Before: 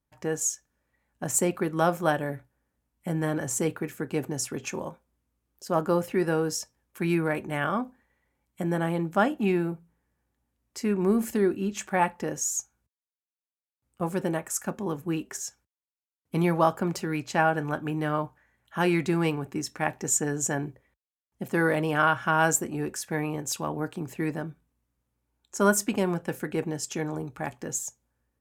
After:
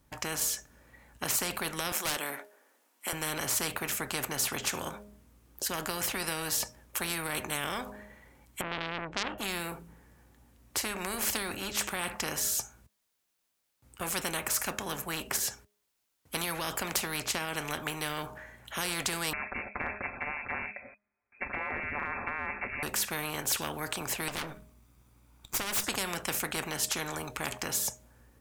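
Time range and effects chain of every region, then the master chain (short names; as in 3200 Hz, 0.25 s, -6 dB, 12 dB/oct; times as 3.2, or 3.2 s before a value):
1.92–3.13 Bessel high-pass 490 Hz, order 6 + hard clip -26 dBFS
8.61–9.38 tape spacing loss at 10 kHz 45 dB + core saturation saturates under 2100 Hz
19.33–22.83 comb 6.2 ms, depth 83% + inverted band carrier 2500 Hz
24.28–25.84 minimum comb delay 0.85 ms + compressor 4:1, threshold -35 dBFS
whole clip: de-hum 206.9 Hz, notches 3; limiter -17 dBFS; spectral compressor 4:1; gain +5.5 dB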